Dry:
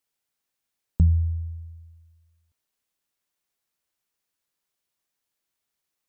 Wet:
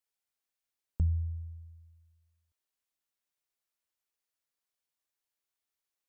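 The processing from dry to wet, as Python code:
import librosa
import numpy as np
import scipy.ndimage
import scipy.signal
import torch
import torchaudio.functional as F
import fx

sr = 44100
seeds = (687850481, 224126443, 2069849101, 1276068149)

y = fx.peak_eq(x, sr, hz=170.0, db=-7.5, octaves=1.4)
y = y * librosa.db_to_amplitude(-7.5)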